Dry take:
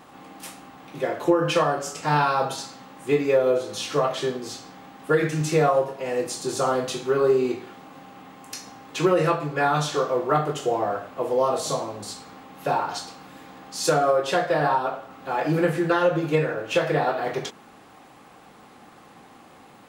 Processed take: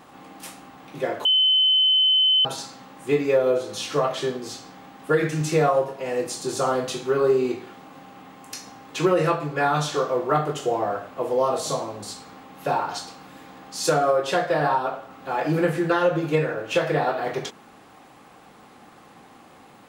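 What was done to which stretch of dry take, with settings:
1.25–2.45 s: bleep 3.05 kHz -15 dBFS

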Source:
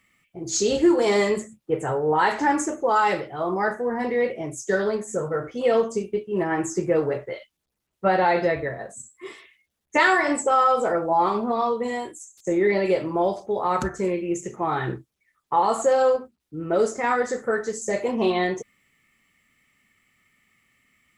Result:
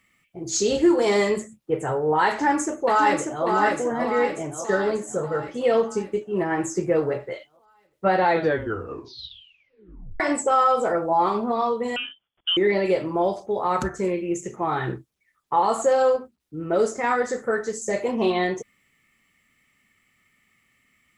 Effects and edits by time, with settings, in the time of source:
2.28–3.46 s: echo throw 590 ms, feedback 55%, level -3.5 dB
8.28 s: tape stop 1.92 s
11.96–12.57 s: frequency inversion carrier 3.4 kHz

